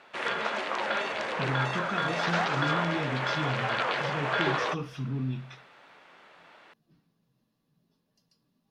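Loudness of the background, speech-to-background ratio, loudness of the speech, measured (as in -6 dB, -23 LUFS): -29.5 LUFS, -5.0 dB, -34.5 LUFS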